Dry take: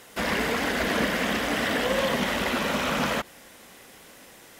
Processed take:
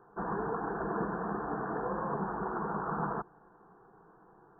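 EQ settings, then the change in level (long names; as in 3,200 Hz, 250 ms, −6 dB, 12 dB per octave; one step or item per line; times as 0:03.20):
linear-phase brick-wall low-pass 1,900 Hz
phaser with its sweep stopped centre 380 Hz, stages 8
−3.0 dB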